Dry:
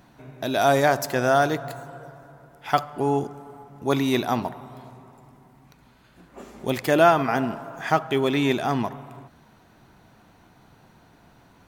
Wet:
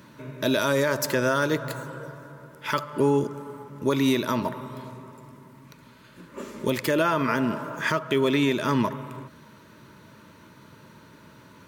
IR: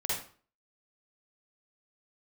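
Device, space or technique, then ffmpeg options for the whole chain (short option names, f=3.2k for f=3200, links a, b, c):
PA system with an anti-feedback notch: -af "highpass=100,asuperstop=centerf=750:order=12:qfactor=3.8,alimiter=limit=-18dB:level=0:latency=1:release=231,volume=5.5dB"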